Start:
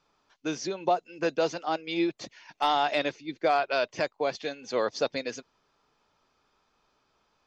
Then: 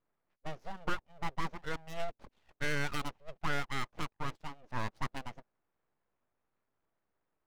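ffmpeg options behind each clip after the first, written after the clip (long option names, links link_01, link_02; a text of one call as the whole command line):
ffmpeg -i in.wav -af "bandreject=frequency=4800:width=11,adynamicsmooth=sensitivity=3:basefreq=850,aeval=exprs='abs(val(0))':channel_layout=same,volume=-6dB" out.wav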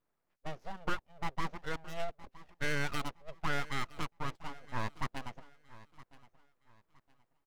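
ffmpeg -i in.wav -af "aecho=1:1:966|1932|2898:0.112|0.0337|0.0101" out.wav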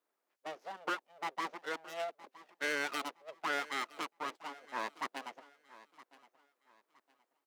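ffmpeg -i in.wav -af "highpass=frequency=300:width=0.5412,highpass=frequency=300:width=1.3066,volume=1dB" out.wav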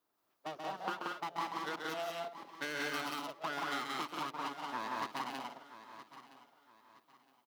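ffmpeg -i in.wav -filter_complex "[0:a]equalizer=frequency=125:width_type=o:width=1:gain=7,equalizer=frequency=500:width_type=o:width=1:gain=-8,equalizer=frequency=2000:width_type=o:width=1:gain=-8,equalizer=frequency=8000:width_type=o:width=1:gain=-7,acompressor=threshold=-43dB:ratio=6,asplit=2[link_01][link_02];[link_02]aecho=0:1:134.1|180.8|233.2:0.562|0.891|0.355[link_03];[link_01][link_03]amix=inputs=2:normalize=0,volume=6.5dB" out.wav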